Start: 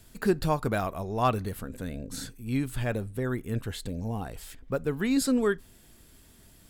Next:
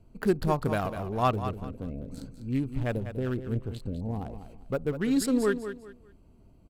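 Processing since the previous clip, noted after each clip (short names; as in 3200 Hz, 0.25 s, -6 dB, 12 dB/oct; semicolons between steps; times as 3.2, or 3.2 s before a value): Wiener smoothing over 25 samples; on a send: feedback echo 0.198 s, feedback 27%, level -10.5 dB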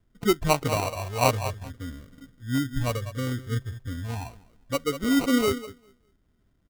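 low-pass opened by the level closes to 1100 Hz, open at -21 dBFS; spectral noise reduction 14 dB; sample-and-hold 26×; gain +3.5 dB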